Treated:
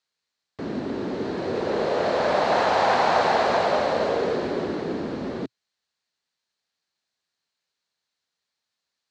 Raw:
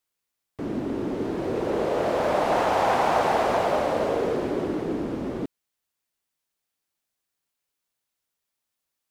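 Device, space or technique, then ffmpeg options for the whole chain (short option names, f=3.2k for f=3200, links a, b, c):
car door speaker: -af "highpass=80,equalizer=f=120:t=q:w=4:g=-5,equalizer=f=310:t=q:w=4:g=-5,equalizer=f=1.7k:t=q:w=4:g=4,equalizer=f=4.2k:t=q:w=4:g=9,lowpass=f=7.1k:w=0.5412,lowpass=f=7.1k:w=1.3066,volume=1.5dB"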